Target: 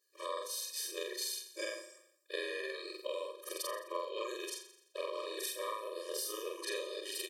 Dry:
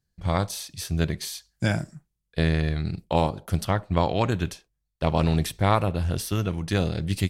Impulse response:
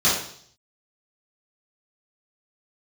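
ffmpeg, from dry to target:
-af "afftfilt=real='re':imag='-im':win_size=4096:overlap=0.75,highpass=620,equalizer=frequency=1700:width=0.55:gain=-6.5,acompressor=threshold=-52dB:ratio=5,aecho=1:1:85|170|255|340|425:0.224|0.116|0.0605|0.0315|0.0164,afftfilt=real='re*eq(mod(floor(b*sr/1024/320),2),1)':imag='im*eq(mod(floor(b*sr/1024/320),2),1)':win_size=1024:overlap=0.75,volume=17dB"

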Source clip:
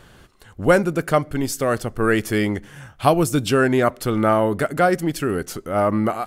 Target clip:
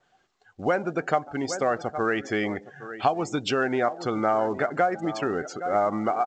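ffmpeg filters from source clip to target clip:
ffmpeg -i in.wav -filter_complex "[0:a]equalizer=frequency=750:width=7.1:gain=9.5,asplit=2[link_01][link_02];[link_02]aecho=0:1:813:0.141[link_03];[link_01][link_03]amix=inputs=2:normalize=0,acompressor=threshold=-17dB:ratio=10,atempo=1,adynamicequalizer=threshold=0.00562:dfrequency=5700:dqfactor=0.83:tfrequency=5700:tqfactor=0.83:attack=5:release=100:ratio=0.375:range=2:mode=cutabove:tftype=bell,highpass=frequency=420:poles=1,asplit=2[link_04][link_05];[link_05]asplit=2[link_06][link_07];[link_06]adelay=146,afreqshift=95,volume=-22dB[link_08];[link_07]adelay=292,afreqshift=190,volume=-31.1dB[link_09];[link_08][link_09]amix=inputs=2:normalize=0[link_10];[link_04][link_10]amix=inputs=2:normalize=0,afftdn=noise_reduction=19:noise_floor=-39" -ar 16000 -c:a pcm_mulaw out.wav

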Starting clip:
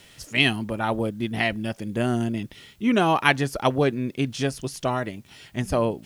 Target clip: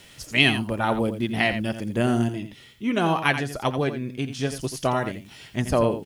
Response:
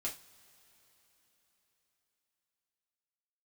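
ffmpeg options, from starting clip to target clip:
-filter_complex "[0:a]asplit=3[link_01][link_02][link_03];[link_01]afade=type=out:start_time=2.28:duration=0.02[link_04];[link_02]flanger=delay=5.9:depth=2.5:regen=66:speed=1.3:shape=sinusoidal,afade=type=in:start_time=2.28:duration=0.02,afade=type=out:start_time=4.49:duration=0.02[link_05];[link_03]afade=type=in:start_time=4.49:duration=0.02[link_06];[link_04][link_05][link_06]amix=inputs=3:normalize=0,aecho=1:1:85:0.316,volume=1.5dB"

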